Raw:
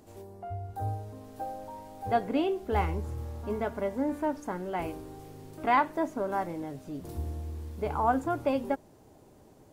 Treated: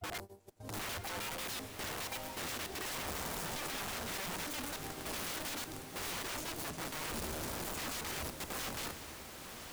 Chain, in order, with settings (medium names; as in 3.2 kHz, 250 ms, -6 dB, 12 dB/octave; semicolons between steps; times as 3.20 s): slices played last to first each 99 ms, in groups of 6; gate -43 dBFS, range -25 dB; treble shelf 2.6 kHz +9 dB; in parallel at +0.5 dB: peak limiter -25 dBFS, peak gain reduction 13 dB; on the sum: compression 16:1, threshold -25 dBFS, peak gain reduction 10 dB; granulator 180 ms, grains 12 per s, spray 21 ms, pitch spread up and down by 0 st; integer overflow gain 33.5 dB; on a send: echo that smears into a reverb 947 ms, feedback 43%, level -7.5 dB; on the sum: added noise pink -77 dBFS; trim -2.5 dB